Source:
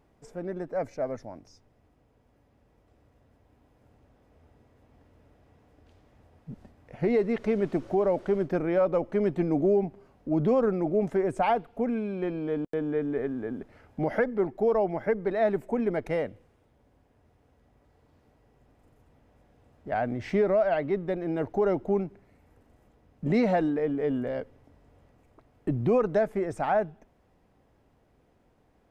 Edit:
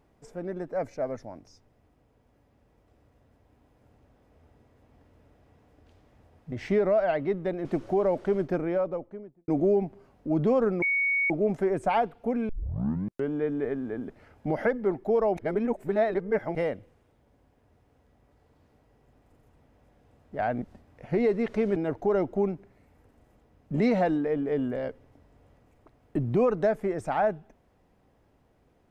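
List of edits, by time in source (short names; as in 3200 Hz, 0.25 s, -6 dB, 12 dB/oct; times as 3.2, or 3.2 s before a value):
6.52–7.66 swap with 20.15–21.28
8.4–9.49 studio fade out
10.83 add tone 2230 Hz -22.5 dBFS 0.48 s
12.02 tape start 0.83 s
14.9–16.08 reverse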